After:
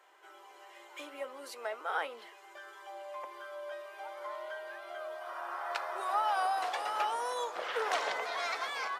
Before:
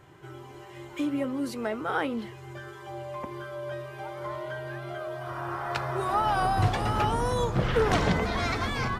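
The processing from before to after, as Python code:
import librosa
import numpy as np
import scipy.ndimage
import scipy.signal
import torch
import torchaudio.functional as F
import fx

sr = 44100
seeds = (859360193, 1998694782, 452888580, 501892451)

y = scipy.signal.sosfilt(scipy.signal.butter(4, 540.0, 'highpass', fs=sr, output='sos'), x)
y = y * librosa.db_to_amplitude(-4.5)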